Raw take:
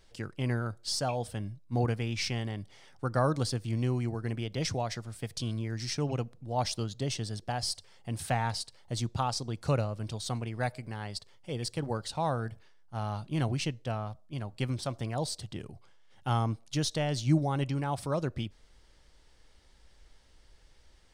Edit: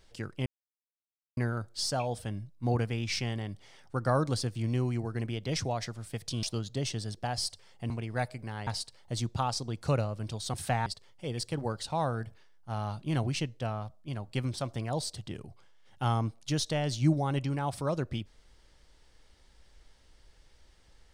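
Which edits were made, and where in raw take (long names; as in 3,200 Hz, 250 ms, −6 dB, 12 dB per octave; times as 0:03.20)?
0:00.46: splice in silence 0.91 s
0:05.52–0:06.68: remove
0:08.15–0:08.47: swap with 0:10.34–0:11.11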